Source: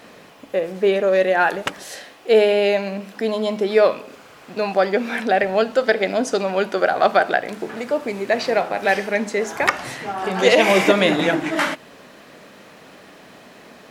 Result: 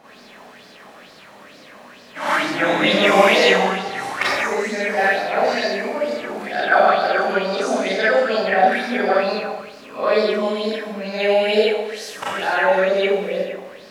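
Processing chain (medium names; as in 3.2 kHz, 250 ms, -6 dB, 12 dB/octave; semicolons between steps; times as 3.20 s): reverse the whole clip; Schroeder reverb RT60 1.1 s, combs from 29 ms, DRR -9 dB; sweeping bell 2.2 Hz 790–5000 Hz +11 dB; trim -11 dB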